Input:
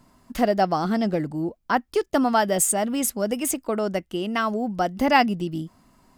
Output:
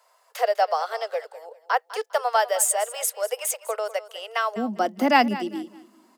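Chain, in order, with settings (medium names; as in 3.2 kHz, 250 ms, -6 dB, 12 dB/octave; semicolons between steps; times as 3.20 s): steep high-pass 450 Hz 96 dB/octave, from 4.56 s 200 Hz; feedback delay 201 ms, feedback 27%, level -16 dB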